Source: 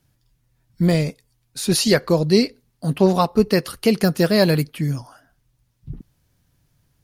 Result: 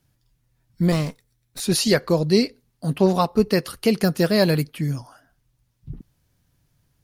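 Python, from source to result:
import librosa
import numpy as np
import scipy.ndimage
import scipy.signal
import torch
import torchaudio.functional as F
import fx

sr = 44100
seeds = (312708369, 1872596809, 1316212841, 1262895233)

y = fx.lower_of_two(x, sr, delay_ms=0.53, at=(0.92, 1.6))
y = F.gain(torch.from_numpy(y), -2.0).numpy()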